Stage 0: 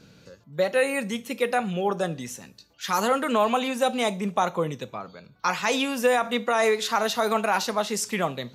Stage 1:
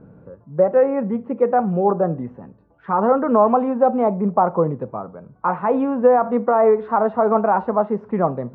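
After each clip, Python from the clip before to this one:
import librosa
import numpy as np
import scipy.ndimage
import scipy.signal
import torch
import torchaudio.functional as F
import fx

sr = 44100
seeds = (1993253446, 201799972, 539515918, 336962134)

y = scipy.signal.sosfilt(scipy.signal.butter(4, 1100.0, 'lowpass', fs=sr, output='sos'), x)
y = y * 10.0 ** (8.0 / 20.0)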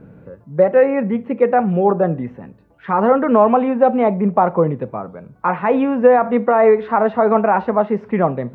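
y = fx.high_shelf_res(x, sr, hz=1600.0, db=8.0, q=1.5)
y = y * 10.0 ** (3.5 / 20.0)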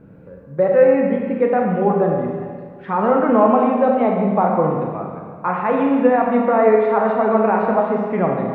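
y = fx.rev_schroeder(x, sr, rt60_s=1.8, comb_ms=29, drr_db=0.0)
y = y * 10.0 ** (-4.0 / 20.0)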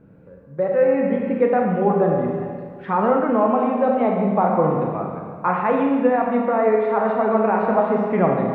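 y = fx.rider(x, sr, range_db=3, speed_s=0.5)
y = y * 10.0 ** (-2.0 / 20.0)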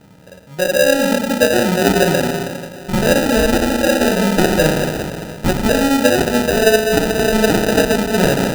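y = fx.sample_hold(x, sr, seeds[0], rate_hz=1100.0, jitter_pct=0)
y = y * 10.0 ** (4.0 / 20.0)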